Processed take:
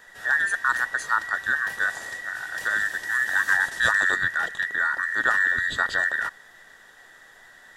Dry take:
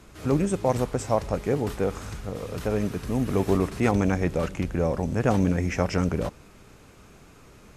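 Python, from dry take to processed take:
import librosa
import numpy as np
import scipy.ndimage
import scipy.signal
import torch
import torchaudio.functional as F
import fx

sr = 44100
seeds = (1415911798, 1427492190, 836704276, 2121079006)

y = fx.band_invert(x, sr, width_hz=2000)
y = fx.dynamic_eq(y, sr, hz=7400.0, q=0.73, threshold_db=-44.0, ratio=4.0, max_db=7, at=(1.71, 4.16))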